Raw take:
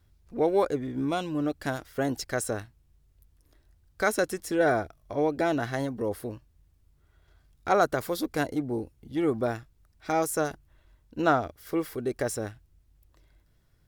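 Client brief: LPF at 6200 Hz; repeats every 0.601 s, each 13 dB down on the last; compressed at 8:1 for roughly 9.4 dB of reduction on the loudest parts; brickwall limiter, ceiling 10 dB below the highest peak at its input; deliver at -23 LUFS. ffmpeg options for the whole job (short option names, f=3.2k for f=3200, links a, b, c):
-af "lowpass=6.2k,acompressor=threshold=-28dB:ratio=8,alimiter=level_in=3.5dB:limit=-24dB:level=0:latency=1,volume=-3.5dB,aecho=1:1:601|1202|1803:0.224|0.0493|0.0108,volume=15.5dB"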